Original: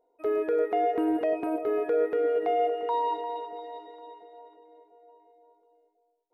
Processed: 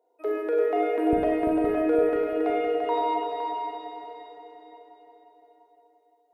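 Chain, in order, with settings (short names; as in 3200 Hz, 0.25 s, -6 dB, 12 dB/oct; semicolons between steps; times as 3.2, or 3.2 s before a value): HPF 280 Hz 24 dB/oct, from 1.13 s 47 Hz; multi-head echo 0.171 s, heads second and third, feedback 44%, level -6 dB; Schroeder reverb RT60 0.81 s, combs from 32 ms, DRR 1.5 dB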